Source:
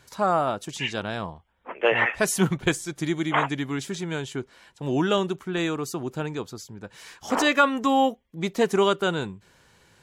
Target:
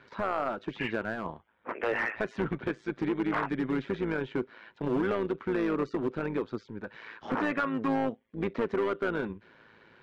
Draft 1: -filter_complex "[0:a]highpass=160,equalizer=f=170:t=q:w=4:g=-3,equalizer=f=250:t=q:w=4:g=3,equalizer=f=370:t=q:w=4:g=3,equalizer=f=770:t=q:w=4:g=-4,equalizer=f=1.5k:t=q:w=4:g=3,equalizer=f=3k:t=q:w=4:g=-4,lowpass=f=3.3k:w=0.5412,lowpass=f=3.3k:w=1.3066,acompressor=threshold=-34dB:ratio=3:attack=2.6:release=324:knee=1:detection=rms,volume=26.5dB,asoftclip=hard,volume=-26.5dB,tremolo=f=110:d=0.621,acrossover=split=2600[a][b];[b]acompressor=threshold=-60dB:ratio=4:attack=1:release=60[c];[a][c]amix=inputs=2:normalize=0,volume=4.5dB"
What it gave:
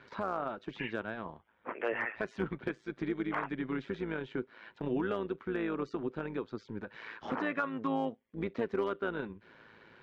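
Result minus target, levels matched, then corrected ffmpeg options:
compressor: peak gain reduction +7 dB
-filter_complex "[0:a]highpass=160,equalizer=f=170:t=q:w=4:g=-3,equalizer=f=250:t=q:w=4:g=3,equalizer=f=370:t=q:w=4:g=3,equalizer=f=770:t=q:w=4:g=-4,equalizer=f=1.5k:t=q:w=4:g=3,equalizer=f=3k:t=q:w=4:g=-4,lowpass=f=3.3k:w=0.5412,lowpass=f=3.3k:w=1.3066,acompressor=threshold=-23.5dB:ratio=3:attack=2.6:release=324:knee=1:detection=rms,volume=26.5dB,asoftclip=hard,volume=-26.5dB,tremolo=f=110:d=0.621,acrossover=split=2600[a][b];[b]acompressor=threshold=-60dB:ratio=4:attack=1:release=60[c];[a][c]amix=inputs=2:normalize=0,volume=4.5dB"

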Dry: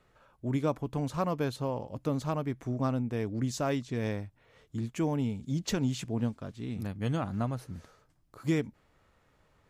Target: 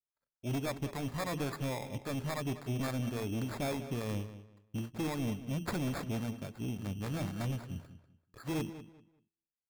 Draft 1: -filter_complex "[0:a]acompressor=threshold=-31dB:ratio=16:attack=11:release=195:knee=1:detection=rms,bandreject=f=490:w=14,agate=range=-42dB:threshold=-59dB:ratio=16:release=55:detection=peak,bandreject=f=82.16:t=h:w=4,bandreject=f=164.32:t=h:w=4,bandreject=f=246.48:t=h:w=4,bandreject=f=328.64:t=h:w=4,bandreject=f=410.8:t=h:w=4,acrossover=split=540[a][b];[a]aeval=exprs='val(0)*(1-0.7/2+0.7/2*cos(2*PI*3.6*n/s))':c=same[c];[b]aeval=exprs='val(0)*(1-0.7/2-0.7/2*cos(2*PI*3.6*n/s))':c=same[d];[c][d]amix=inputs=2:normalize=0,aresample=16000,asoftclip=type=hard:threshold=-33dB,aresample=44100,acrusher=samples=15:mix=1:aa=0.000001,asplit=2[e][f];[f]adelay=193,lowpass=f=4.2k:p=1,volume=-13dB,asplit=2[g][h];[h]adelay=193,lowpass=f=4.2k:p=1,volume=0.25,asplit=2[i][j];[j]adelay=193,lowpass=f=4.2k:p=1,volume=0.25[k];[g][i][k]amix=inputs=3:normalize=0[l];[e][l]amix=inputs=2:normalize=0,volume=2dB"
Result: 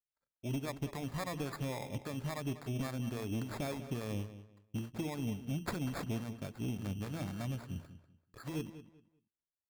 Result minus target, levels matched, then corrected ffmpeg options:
compressor: peak gain reduction +10 dB
-filter_complex "[0:a]bandreject=f=490:w=14,agate=range=-42dB:threshold=-59dB:ratio=16:release=55:detection=peak,bandreject=f=82.16:t=h:w=4,bandreject=f=164.32:t=h:w=4,bandreject=f=246.48:t=h:w=4,bandreject=f=328.64:t=h:w=4,bandreject=f=410.8:t=h:w=4,acrossover=split=540[a][b];[a]aeval=exprs='val(0)*(1-0.7/2+0.7/2*cos(2*PI*3.6*n/s))':c=same[c];[b]aeval=exprs='val(0)*(1-0.7/2-0.7/2*cos(2*PI*3.6*n/s))':c=same[d];[c][d]amix=inputs=2:normalize=0,aresample=16000,asoftclip=type=hard:threshold=-33dB,aresample=44100,acrusher=samples=15:mix=1:aa=0.000001,asplit=2[e][f];[f]adelay=193,lowpass=f=4.2k:p=1,volume=-13dB,asplit=2[g][h];[h]adelay=193,lowpass=f=4.2k:p=1,volume=0.25,asplit=2[i][j];[j]adelay=193,lowpass=f=4.2k:p=1,volume=0.25[k];[g][i][k]amix=inputs=3:normalize=0[l];[e][l]amix=inputs=2:normalize=0,volume=2dB"

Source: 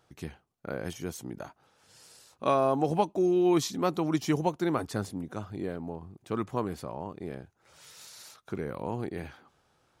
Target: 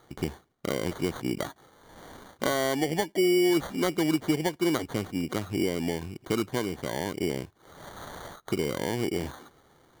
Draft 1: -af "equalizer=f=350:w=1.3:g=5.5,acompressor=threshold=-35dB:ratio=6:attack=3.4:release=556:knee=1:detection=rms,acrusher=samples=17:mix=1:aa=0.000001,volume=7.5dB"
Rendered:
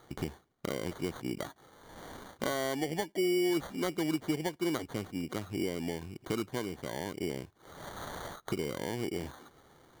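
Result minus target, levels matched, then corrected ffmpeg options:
compressor: peak gain reduction +6 dB
-af "equalizer=f=350:w=1.3:g=5.5,acompressor=threshold=-27.5dB:ratio=6:attack=3.4:release=556:knee=1:detection=rms,acrusher=samples=17:mix=1:aa=0.000001,volume=7.5dB"

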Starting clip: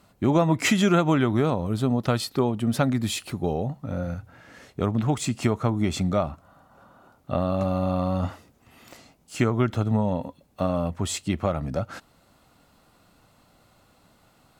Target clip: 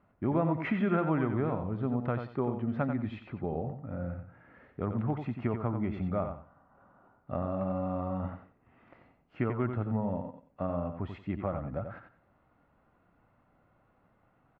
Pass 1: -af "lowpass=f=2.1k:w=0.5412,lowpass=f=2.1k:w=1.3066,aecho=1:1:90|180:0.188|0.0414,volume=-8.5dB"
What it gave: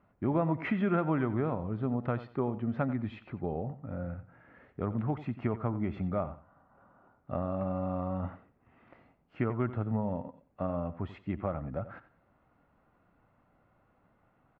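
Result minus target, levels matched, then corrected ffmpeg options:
echo-to-direct -7 dB
-af "lowpass=f=2.1k:w=0.5412,lowpass=f=2.1k:w=1.3066,aecho=1:1:90|180|270:0.422|0.0928|0.0204,volume=-8.5dB"

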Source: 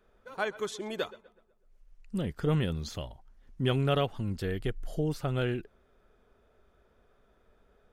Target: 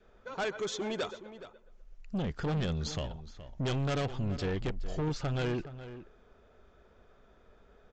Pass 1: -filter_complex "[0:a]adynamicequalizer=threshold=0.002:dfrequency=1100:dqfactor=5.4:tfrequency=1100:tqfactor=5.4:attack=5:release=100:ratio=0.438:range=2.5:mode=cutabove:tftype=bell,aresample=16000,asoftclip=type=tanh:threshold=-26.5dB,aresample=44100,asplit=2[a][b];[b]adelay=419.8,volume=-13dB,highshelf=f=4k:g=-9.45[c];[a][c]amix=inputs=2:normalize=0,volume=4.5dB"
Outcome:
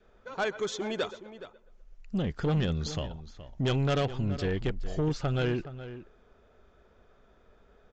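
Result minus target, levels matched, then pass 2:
soft clip: distortion -5 dB
-filter_complex "[0:a]adynamicequalizer=threshold=0.002:dfrequency=1100:dqfactor=5.4:tfrequency=1100:tqfactor=5.4:attack=5:release=100:ratio=0.438:range=2.5:mode=cutabove:tftype=bell,aresample=16000,asoftclip=type=tanh:threshold=-33dB,aresample=44100,asplit=2[a][b];[b]adelay=419.8,volume=-13dB,highshelf=f=4k:g=-9.45[c];[a][c]amix=inputs=2:normalize=0,volume=4.5dB"

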